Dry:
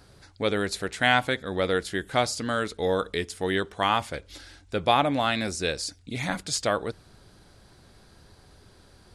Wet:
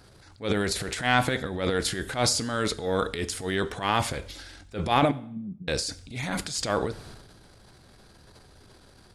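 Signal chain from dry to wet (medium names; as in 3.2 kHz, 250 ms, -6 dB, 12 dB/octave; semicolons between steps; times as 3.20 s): transient shaper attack -11 dB, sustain +10 dB; 5.11–5.68 s: Butterworth band-pass 170 Hz, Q 2.4; plate-style reverb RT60 0.61 s, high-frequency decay 0.95×, DRR 15 dB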